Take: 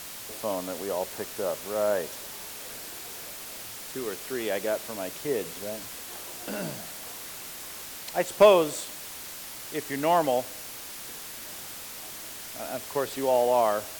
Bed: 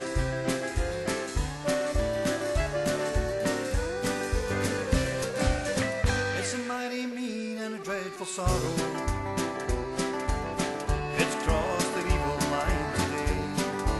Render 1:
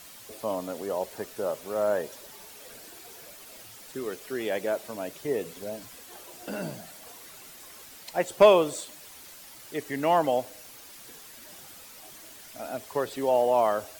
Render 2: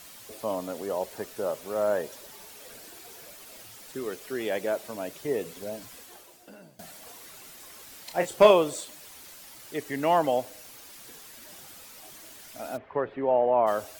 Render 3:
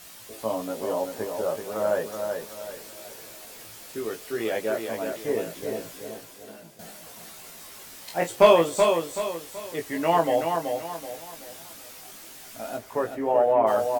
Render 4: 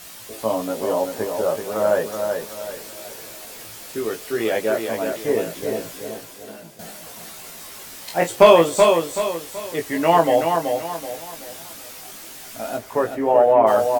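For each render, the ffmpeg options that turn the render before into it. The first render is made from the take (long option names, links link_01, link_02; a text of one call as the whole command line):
ffmpeg -i in.wav -af "afftdn=noise_reduction=9:noise_floor=-41" out.wav
ffmpeg -i in.wav -filter_complex "[0:a]asettb=1/sr,asplit=3[link_01][link_02][link_03];[link_01]atrim=end=7.844[link_04];[link_02]atrim=start=7.84:end=8.51,asetpts=PTS-STARTPTS,afade=type=in:duration=0.004:curve=qsin,afade=type=out:start_time=0.666:duration=0.004:curve=qsin,asplit=2[link_05][link_06];[link_06]adelay=29,volume=-7dB[link_07];[link_05][link_07]amix=inputs=2:normalize=0,atrim=end_sample=29547[link_08];[link_03]atrim=start=8.506[link_09];[link_04][link_08]acrossfade=duration=0.004:curve1=hsin:curve2=qsin[link_10];[link_10][link_09]acrossfade=duration=0.004:curve1=qsin:curve2=hsin,asplit=3[link_11][link_12][link_13];[link_11]afade=type=out:start_time=12.76:duration=0.02[link_14];[link_12]lowpass=frequency=2200:width=0.5412,lowpass=frequency=2200:width=1.3066,afade=type=in:start_time=12.76:duration=0.02,afade=type=out:start_time=13.66:duration=0.02[link_15];[link_13]afade=type=in:start_time=13.66:duration=0.02[link_16];[link_14][link_15][link_16]amix=inputs=3:normalize=0,asplit=2[link_17][link_18];[link_17]atrim=end=6.79,asetpts=PTS-STARTPTS,afade=type=out:start_time=6:duration=0.79:curve=qua:silence=0.105925[link_19];[link_18]atrim=start=6.79,asetpts=PTS-STARTPTS,afade=type=in:duration=0.004:curve=hsin:silence=0.105925[link_20];[link_19][link_20]concat=n=2:v=0:a=1" out.wav
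ffmpeg -i in.wav -filter_complex "[0:a]asplit=2[link_01][link_02];[link_02]adelay=18,volume=-3dB[link_03];[link_01][link_03]amix=inputs=2:normalize=0,asplit=2[link_04][link_05];[link_05]aecho=0:1:379|758|1137|1516:0.531|0.196|0.0727|0.0269[link_06];[link_04][link_06]amix=inputs=2:normalize=0" out.wav
ffmpeg -i in.wav -af "volume=6dB,alimiter=limit=-1dB:level=0:latency=1" out.wav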